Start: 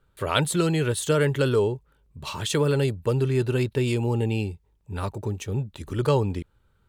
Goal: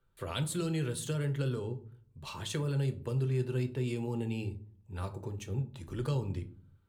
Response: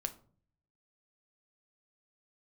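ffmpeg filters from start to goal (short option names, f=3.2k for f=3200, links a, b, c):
-filter_complex "[0:a]acrossover=split=270|3000[a][b][c];[b]acompressor=threshold=-28dB:ratio=6[d];[a][d][c]amix=inputs=3:normalize=0[e];[1:a]atrim=start_sample=2205[f];[e][f]afir=irnorm=-1:irlink=0,asplit=3[g][h][i];[g]afade=t=out:st=1.12:d=0.02[j];[h]adynamicequalizer=threshold=0.00631:dfrequency=2500:dqfactor=0.7:tfrequency=2500:tqfactor=0.7:attack=5:release=100:ratio=0.375:range=2:mode=cutabove:tftype=highshelf,afade=t=in:st=1.12:d=0.02,afade=t=out:st=3.94:d=0.02[k];[i]afade=t=in:st=3.94:d=0.02[l];[j][k][l]amix=inputs=3:normalize=0,volume=-9dB"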